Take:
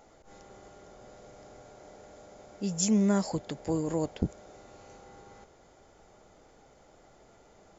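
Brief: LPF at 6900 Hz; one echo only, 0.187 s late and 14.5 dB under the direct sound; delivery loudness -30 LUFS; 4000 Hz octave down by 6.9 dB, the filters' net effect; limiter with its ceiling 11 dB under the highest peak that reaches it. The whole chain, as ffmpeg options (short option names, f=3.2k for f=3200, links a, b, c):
-af "lowpass=6.9k,equalizer=f=4k:t=o:g=-9,alimiter=level_in=0.5dB:limit=-24dB:level=0:latency=1,volume=-0.5dB,aecho=1:1:187:0.188,volume=4.5dB"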